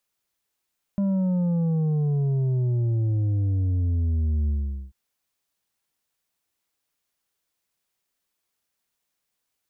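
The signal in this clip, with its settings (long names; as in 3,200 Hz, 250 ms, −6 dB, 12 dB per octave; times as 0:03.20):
bass drop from 200 Hz, over 3.94 s, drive 6 dB, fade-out 0.44 s, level −21 dB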